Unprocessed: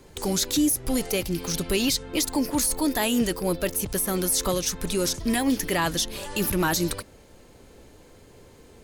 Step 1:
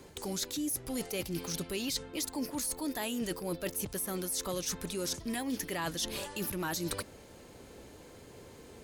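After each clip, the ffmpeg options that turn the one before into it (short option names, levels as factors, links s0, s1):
-af "highpass=f=78:p=1,areverse,acompressor=threshold=0.0224:ratio=6,areverse"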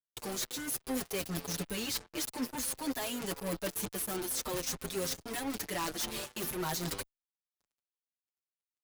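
-filter_complex "[0:a]acrusher=bits=5:mix=0:aa=0.5,aeval=exprs='(mod(17.8*val(0)+1,2)-1)/17.8':c=same,asplit=2[s0][s1];[s1]adelay=6.4,afreqshift=0.51[s2];[s0][s2]amix=inputs=2:normalize=1,volume=1.33"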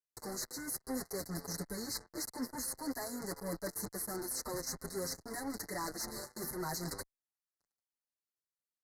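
-af "asuperstop=centerf=2900:order=20:qfactor=1.5,aresample=32000,aresample=44100,volume=0.668"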